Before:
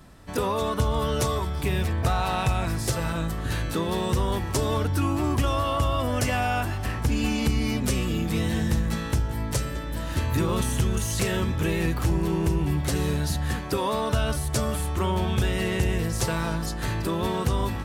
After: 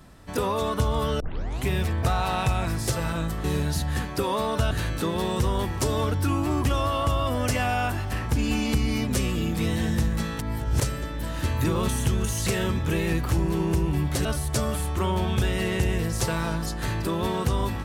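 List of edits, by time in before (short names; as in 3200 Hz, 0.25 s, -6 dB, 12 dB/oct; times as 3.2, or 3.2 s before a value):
1.2 tape start 0.48 s
9.12–9.54 reverse
12.98–14.25 move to 3.44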